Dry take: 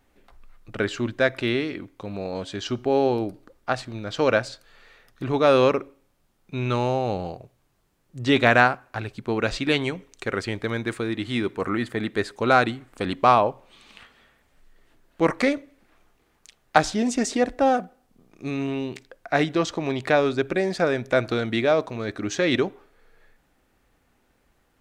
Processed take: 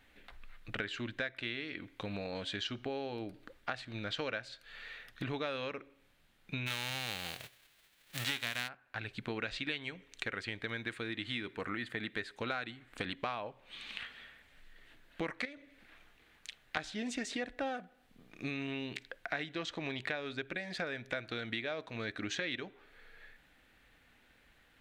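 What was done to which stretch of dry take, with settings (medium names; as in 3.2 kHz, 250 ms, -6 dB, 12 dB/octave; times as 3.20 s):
6.66–8.67 s: formants flattened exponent 0.3
15.45–16.77 s: compression 2.5:1, threshold -33 dBFS
whole clip: high-order bell 2.5 kHz +9.5 dB; compression 6:1, threshold -33 dBFS; band-stop 380 Hz, Q 12; trim -3 dB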